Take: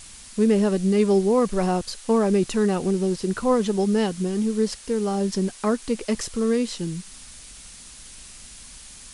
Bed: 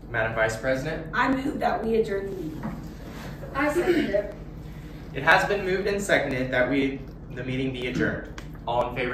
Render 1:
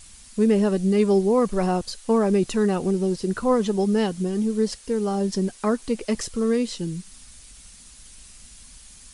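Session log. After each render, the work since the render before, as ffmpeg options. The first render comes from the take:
ffmpeg -i in.wav -af "afftdn=noise_reduction=6:noise_floor=-44" out.wav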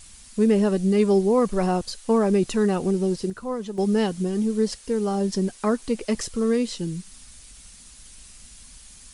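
ffmpeg -i in.wav -filter_complex "[0:a]asplit=3[link_01][link_02][link_03];[link_01]atrim=end=3.3,asetpts=PTS-STARTPTS,afade=type=out:start_time=3.14:duration=0.16:curve=log:silence=0.354813[link_04];[link_02]atrim=start=3.3:end=3.78,asetpts=PTS-STARTPTS,volume=-9dB[link_05];[link_03]atrim=start=3.78,asetpts=PTS-STARTPTS,afade=type=in:duration=0.16:curve=log:silence=0.354813[link_06];[link_04][link_05][link_06]concat=n=3:v=0:a=1" out.wav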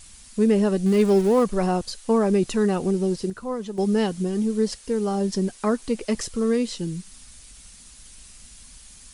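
ffmpeg -i in.wav -filter_complex "[0:a]asettb=1/sr,asplit=3[link_01][link_02][link_03];[link_01]atrim=end=0.864[link_04];[link_02]atrim=start=0.86:end=1.44,asetpts=PTS-STARTPTS,afade=type=in:duration=0.004:curve=qsin,afade=type=out:start_time=0.576:duration=0.004:curve=qsin,aeval=exprs='val(0)+0.5*0.0299*sgn(val(0))':channel_layout=same[link_05];[link_03]atrim=start=1.436[link_06];[link_04][link_05]acrossfade=duration=0.004:curve1=hsin:curve2=qsin[link_07];[link_07][link_06]acrossfade=duration=0.004:curve1=qsin:curve2=hsin" out.wav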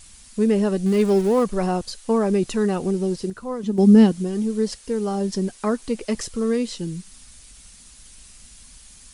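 ffmpeg -i in.wav -filter_complex "[0:a]asettb=1/sr,asplit=3[link_01][link_02][link_03];[link_01]atrim=end=3.634[link_04];[link_02]atrim=start=3.63:end=4.12,asetpts=PTS-STARTPTS,afade=type=in:duration=0.004:curve=qsin,afade=type=out:start_time=0.486:duration=0.004:curve=qsin,equalizer=frequency=240:width=1.5:gain=14[link_05];[link_03]atrim=start=4.116[link_06];[link_04][link_05]acrossfade=duration=0.004:curve1=hsin:curve2=qsin[link_07];[link_07][link_06]acrossfade=duration=0.004:curve1=qsin:curve2=hsin" out.wav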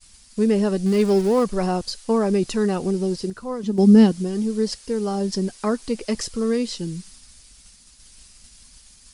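ffmpeg -i in.wav -af "agate=range=-33dB:threshold=-41dB:ratio=3:detection=peak,equalizer=frequency=4900:width_type=o:width=0.44:gain=5.5" out.wav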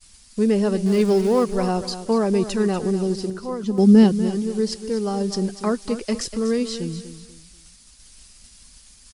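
ffmpeg -i in.wav -af "aecho=1:1:243|486|729:0.251|0.0804|0.0257" out.wav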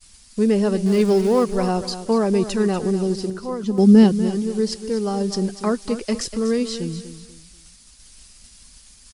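ffmpeg -i in.wav -af "volume=1dB" out.wav

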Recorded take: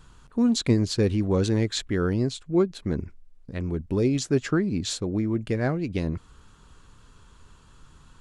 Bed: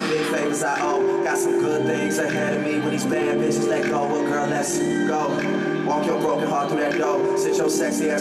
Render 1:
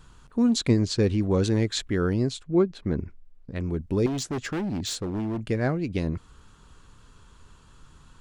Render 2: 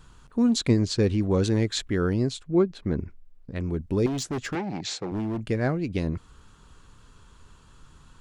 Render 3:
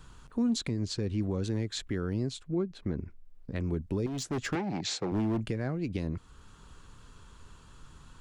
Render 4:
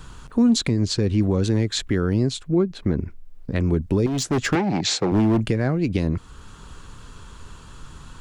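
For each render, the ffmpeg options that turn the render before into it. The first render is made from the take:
ffmpeg -i in.wav -filter_complex "[0:a]asettb=1/sr,asplit=3[link_01][link_02][link_03];[link_01]atrim=end=0.684[link_04];[link_02]atrim=start=0.68:end=1.21,asetpts=PTS-STARTPTS,afade=type=in:duration=0.004:curve=qsin,afade=type=out:start_time=0.526:duration=0.004:curve=qsin,lowpass=frequency=9000:width=0.5412,lowpass=frequency=9000:width=1.3066[link_05];[link_03]atrim=start=1.206[link_06];[link_04][link_05]acrossfade=duration=0.004:curve1=hsin:curve2=qsin[link_07];[link_07][link_06]acrossfade=duration=0.004:curve1=qsin:curve2=hsin,asettb=1/sr,asplit=3[link_08][link_09][link_10];[link_08]atrim=end=2.444[link_11];[link_09]atrim=start=2.44:end=3.56,asetpts=PTS-STARTPTS,afade=type=in:duration=0.004:curve=qsin,afade=type=out:start_time=1.116:duration=0.004:curve=qsin,aemphasis=mode=reproduction:type=50fm[link_12];[link_10]atrim=start=3.556[link_13];[link_11][link_12]acrossfade=duration=0.004:curve1=hsin:curve2=qsin[link_14];[link_14][link_13]acrossfade=duration=0.004:curve1=qsin:curve2=hsin,asettb=1/sr,asplit=3[link_15][link_16][link_17];[link_15]atrim=end=4.064[link_18];[link_16]atrim=start=4.06:end=5.44,asetpts=PTS-STARTPTS,afade=type=in:duration=0.004:curve=qsin,afade=type=out:start_time=1.376:duration=0.004:curve=qsin,volume=26dB,asoftclip=hard,volume=-26dB[link_19];[link_17]atrim=start=5.436[link_20];[link_18][link_19]acrossfade=duration=0.004:curve1=hsin:curve2=qsin[link_21];[link_21][link_20]acrossfade=duration=0.004:curve1=qsin:curve2=hsin" out.wav
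ffmpeg -i in.wav -filter_complex "[0:a]asettb=1/sr,asplit=3[link_01][link_02][link_03];[link_01]atrim=end=4.554[link_04];[link_02]atrim=start=4.55:end=5.12,asetpts=PTS-STARTPTS,afade=type=in:duration=0.004:curve=qsin,afade=type=out:start_time=0.566:duration=0.004:curve=qsin,highpass=frequency=130:width=0.5412,highpass=frequency=130:width=1.3066,equalizer=frequency=240:width_type=q:width=4:gain=-9,equalizer=frequency=790:width_type=q:width=4:gain=8,equalizer=frequency=2200:width_type=q:width=4:gain=7,equalizer=frequency=3200:width_type=q:width=4:gain=-3,lowpass=frequency=6900:width=0.5412,lowpass=frequency=6900:width=1.3066[link_05];[link_03]atrim=start=5.116[link_06];[link_04][link_05]acrossfade=duration=0.004:curve1=hsin:curve2=qsin[link_07];[link_07][link_06]acrossfade=duration=0.004:curve1=qsin:curve2=hsin" out.wav
ffmpeg -i in.wav -filter_complex "[0:a]acrossover=split=260[link_01][link_02];[link_02]acompressor=threshold=-29dB:ratio=2[link_03];[link_01][link_03]amix=inputs=2:normalize=0,alimiter=limit=-21.5dB:level=0:latency=1:release=494" out.wav
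ffmpeg -i in.wav -af "volume=11dB" out.wav

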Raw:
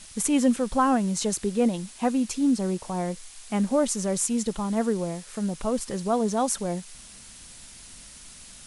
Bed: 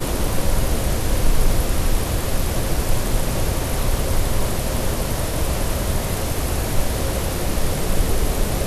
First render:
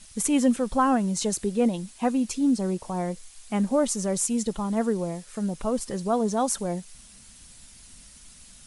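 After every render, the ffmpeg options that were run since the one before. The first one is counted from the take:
ffmpeg -i in.wav -af "afftdn=noise_reduction=6:noise_floor=-47" out.wav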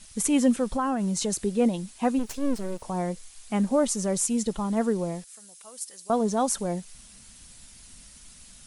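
ffmpeg -i in.wav -filter_complex "[0:a]asettb=1/sr,asplit=3[link_01][link_02][link_03];[link_01]atrim=end=0.644[link_04];[link_02]atrim=start=0.64:end=1.44,asetpts=PTS-STARTPTS,afade=type=in:duration=0.004:curve=qsin,afade=type=out:start_time=0.796:duration=0.004:curve=qsin,acompressor=threshold=-22dB:ratio=6:attack=3.2:release=140:knee=1:detection=peak[link_05];[link_03]atrim=start=1.436[link_06];[link_04][link_05]acrossfade=duration=0.004:curve1=hsin:curve2=qsin[link_07];[link_07][link_06]acrossfade=duration=0.004:curve1=qsin:curve2=hsin,asplit=3[link_08][link_09][link_10];[link_08]afade=type=out:start_time=2.18:duration=0.02[link_11];[link_09]aeval=exprs='max(val(0),0)':channel_layout=same,afade=type=in:start_time=2.18:duration=0.02,afade=type=out:start_time=2.81:duration=0.02[link_12];[link_10]afade=type=in:start_time=2.81:duration=0.02[link_13];[link_11][link_12][link_13]amix=inputs=3:normalize=0,asettb=1/sr,asplit=3[link_14][link_15][link_16];[link_14]atrim=end=5.244[link_17];[link_15]atrim=start=5.24:end=6.1,asetpts=PTS-STARTPTS,afade=type=in:duration=0.004:curve=qsin,afade=type=out:start_time=0.856:duration=0.004:curve=qsin,aderivative[link_18];[link_16]atrim=start=6.096[link_19];[link_17][link_18]acrossfade=duration=0.004:curve1=hsin:curve2=qsin[link_20];[link_20][link_19]acrossfade=duration=0.004:curve1=qsin:curve2=hsin" out.wav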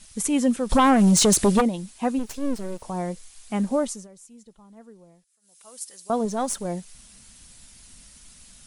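ffmpeg -i in.wav -filter_complex "[0:a]asplit=3[link_01][link_02][link_03];[link_01]afade=type=out:start_time=0.69:duration=0.02[link_04];[link_02]aeval=exprs='0.237*sin(PI/2*2.82*val(0)/0.237)':channel_layout=same,afade=type=in:start_time=0.69:duration=0.02,afade=type=out:start_time=1.6:duration=0.02[link_05];[link_03]afade=type=in:start_time=1.6:duration=0.02[link_06];[link_04][link_05][link_06]amix=inputs=3:normalize=0,asettb=1/sr,asplit=3[link_07][link_08][link_09];[link_07]atrim=end=6.254[link_10];[link_08]atrim=start=6.25:end=6.65,asetpts=PTS-STARTPTS,afade=type=in:duration=0.004:curve=qsin,afade=type=out:start_time=0.396:duration=0.004:curve=qsin,aeval=exprs='if(lt(val(0),0),0.708*val(0),val(0))':channel_layout=same[link_11];[link_09]atrim=start=6.646[link_12];[link_10][link_11]acrossfade=duration=0.004:curve1=hsin:curve2=qsin[link_13];[link_13][link_12]acrossfade=duration=0.004:curve1=qsin:curve2=hsin,asplit=3[link_14][link_15][link_16];[link_14]atrim=end=4.08,asetpts=PTS-STARTPTS,afade=type=out:start_time=3.76:duration=0.32:silence=0.0749894[link_17];[link_15]atrim=start=4.08:end=5.41,asetpts=PTS-STARTPTS,volume=-22.5dB[link_18];[link_16]atrim=start=5.41,asetpts=PTS-STARTPTS,afade=type=in:duration=0.32:silence=0.0749894[link_19];[link_17][link_18][link_19]concat=n=3:v=0:a=1" out.wav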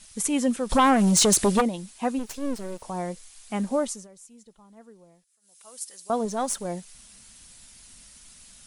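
ffmpeg -i in.wav -af "lowshelf=frequency=330:gain=-5" out.wav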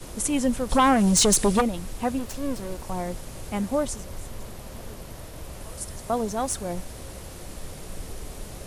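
ffmpeg -i in.wav -i bed.wav -filter_complex "[1:a]volume=-17.5dB[link_01];[0:a][link_01]amix=inputs=2:normalize=0" out.wav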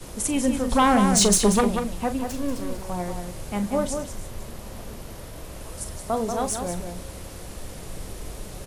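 ffmpeg -i in.wav -filter_complex "[0:a]asplit=2[link_01][link_02];[link_02]adelay=39,volume=-10.5dB[link_03];[link_01][link_03]amix=inputs=2:normalize=0,asplit=2[link_04][link_05];[link_05]adelay=186.6,volume=-6dB,highshelf=frequency=4000:gain=-4.2[link_06];[link_04][link_06]amix=inputs=2:normalize=0" out.wav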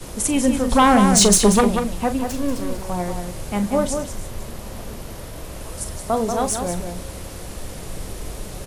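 ffmpeg -i in.wav -af "volume=4.5dB" out.wav

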